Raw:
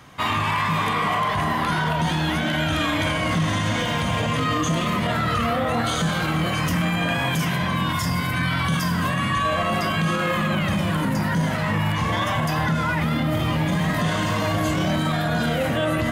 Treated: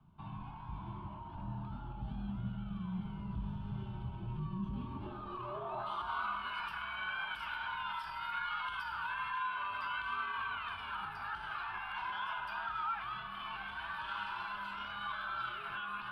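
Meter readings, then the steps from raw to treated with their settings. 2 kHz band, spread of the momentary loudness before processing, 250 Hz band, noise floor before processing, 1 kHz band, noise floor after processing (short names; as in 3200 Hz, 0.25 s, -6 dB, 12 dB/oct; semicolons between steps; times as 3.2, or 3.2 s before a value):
-14.5 dB, 1 LU, -22.5 dB, -24 dBFS, -14.5 dB, -46 dBFS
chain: low shelf 170 Hz -11 dB; limiter -18 dBFS, peak gain reduction 5.5 dB; band-pass sweep 260 Hz -> 1700 Hz, 4.59–6.51; frequency shift -110 Hz; fixed phaser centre 1900 Hz, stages 6; gain -2.5 dB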